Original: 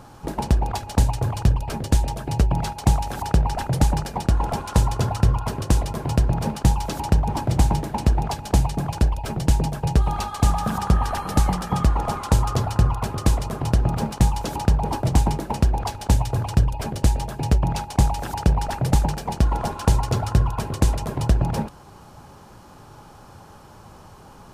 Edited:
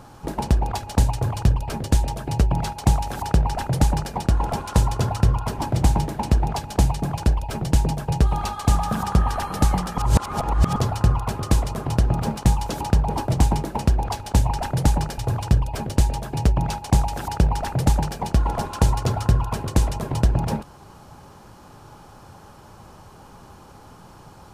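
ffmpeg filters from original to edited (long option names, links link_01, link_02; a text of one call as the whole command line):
ffmpeg -i in.wav -filter_complex "[0:a]asplit=6[link_01][link_02][link_03][link_04][link_05][link_06];[link_01]atrim=end=5.582[link_07];[link_02]atrim=start=7.328:end=11.732[link_08];[link_03]atrim=start=11.728:end=12.512,asetpts=PTS-STARTPTS,areverse[link_09];[link_04]atrim=start=12.508:end=16.242[link_10];[link_05]atrim=start=3.448:end=4.142[link_11];[link_06]atrim=start=16.238[link_12];[link_07][link_08]acrossfade=duration=0.004:curve1=hsin:curve2=hsin[link_13];[link_13][link_09]acrossfade=duration=0.004:curve1=hsin:curve2=hsin[link_14];[link_14][link_10]acrossfade=duration=0.004:curve1=hsin:curve2=hsin[link_15];[link_15][link_11]acrossfade=duration=0.004:curve1=hsin:curve2=hsin[link_16];[link_16][link_12]acrossfade=duration=0.004:curve1=hsin:curve2=hsin" out.wav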